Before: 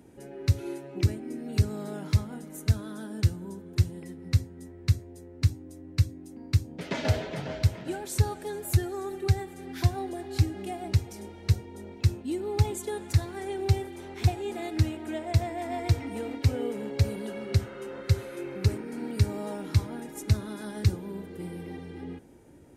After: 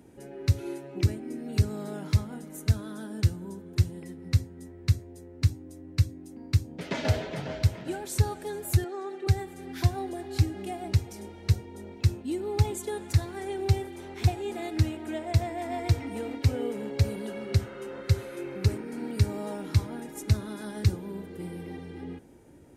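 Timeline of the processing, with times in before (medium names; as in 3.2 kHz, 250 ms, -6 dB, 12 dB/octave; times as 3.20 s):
8.84–9.27 s: band-pass 330–4600 Hz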